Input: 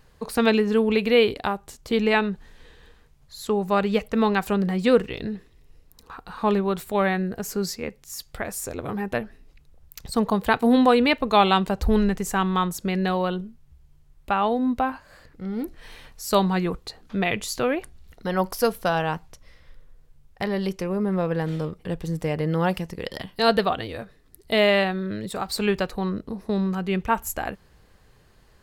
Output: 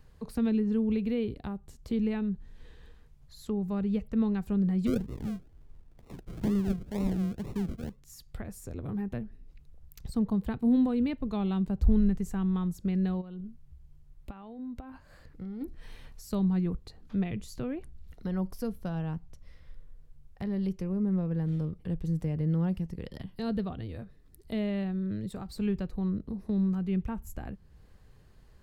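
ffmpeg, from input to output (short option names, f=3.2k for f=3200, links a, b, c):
-filter_complex "[0:a]asplit=3[a][b][c];[a]afade=t=out:st=4.86:d=0.02[d];[b]acrusher=samples=39:mix=1:aa=0.000001:lfo=1:lforange=23.4:lforate=2.1,afade=t=in:st=4.86:d=0.02,afade=t=out:st=8.01:d=0.02[e];[c]afade=t=in:st=8.01:d=0.02[f];[d][e][f]amix=inputs=3:normalize=0,asplit=3[g][h][i];[g]afade=t=out:st=13.2:d=0.02[j];[h]acompressor=threshold=-32dB:ratio=12:attack=3.2:release=140:knee=1:detection=peak,afade=t=in:st=13.2:d=0.02,afade=t=out:st=15.6:d=0.02[k];[i]afade=t=in:st=15.6:d=0.02[l];[j][k][l]amix=inputs=3:normalize=0,acrossover=split=310[m][n];[n]acompressor=threshold=-46dB:ratio=2[o];[m][o]amix=inputs=2:normalize=0,lowshelf=f=270:g=9.5,volume=-8dB"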